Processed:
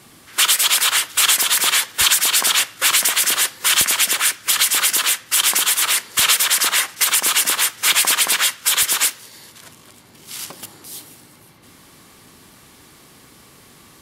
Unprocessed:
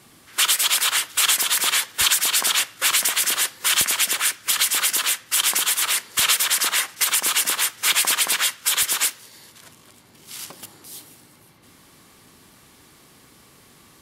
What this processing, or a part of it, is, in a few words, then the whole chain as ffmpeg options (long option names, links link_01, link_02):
parallel distortion: -filter_complex "[0:a]asplit=2[link_01][link_02];[link_02]asoftclip=type=hard:threshold=-21dB,volume=-12dB[link_03];[link_01][link_03]amix=inputs=2:normalize=0,volume=2.5dB"